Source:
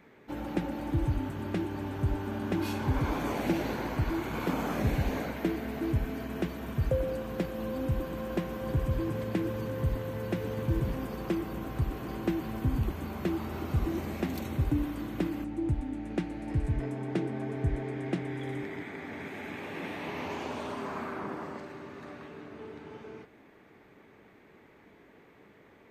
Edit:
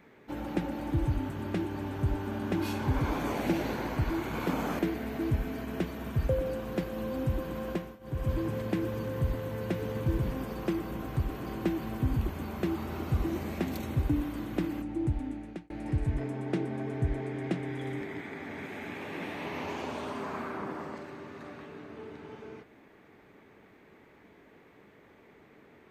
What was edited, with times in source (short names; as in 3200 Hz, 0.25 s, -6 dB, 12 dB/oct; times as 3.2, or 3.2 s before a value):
4.79–5.41 cut
8.31–8.92 dip -19.5 dB, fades 0.30 s
15.9–16.32 fade out